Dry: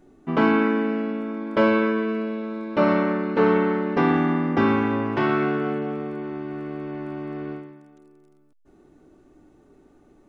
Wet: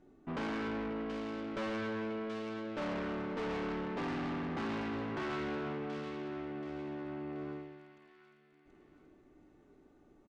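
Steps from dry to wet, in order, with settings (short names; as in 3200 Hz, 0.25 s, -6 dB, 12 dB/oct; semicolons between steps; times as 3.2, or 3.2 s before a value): feedback echo 0.535 s, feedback 46%, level -20 dB; tube stage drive 28 dB, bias 0.35; air absorption 65 m; thin delay 0.729 s, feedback 36%, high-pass 2000 Hz, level -4 dB; gain -7 dB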